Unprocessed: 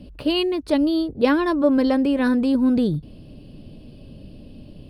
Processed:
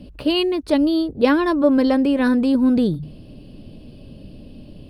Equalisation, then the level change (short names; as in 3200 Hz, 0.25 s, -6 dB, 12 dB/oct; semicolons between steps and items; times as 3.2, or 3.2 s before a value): notches 50/100/150 Hz; +2.0 dB